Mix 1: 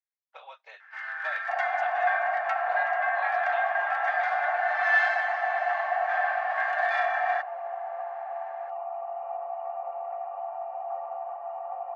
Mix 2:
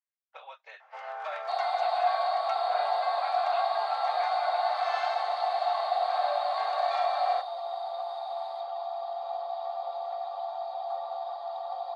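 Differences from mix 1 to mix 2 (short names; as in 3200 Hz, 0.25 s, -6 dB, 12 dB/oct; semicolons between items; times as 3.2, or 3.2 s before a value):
first sound: remove resonant high-pass 1700 Hz, resonance Q 14; second sound: remove brick-wall FIR low-pass 3000 Hz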